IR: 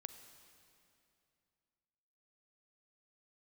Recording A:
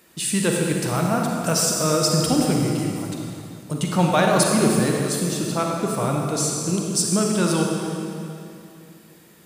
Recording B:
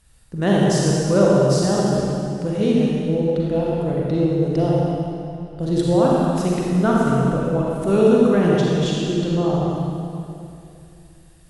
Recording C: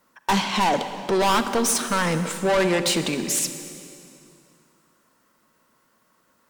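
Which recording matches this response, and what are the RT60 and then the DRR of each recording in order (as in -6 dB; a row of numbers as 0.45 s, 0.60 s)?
C; 2.7 s, 2.7 s, 2.6 s; -0.5 dB, -4.5 dB, 9.0 dB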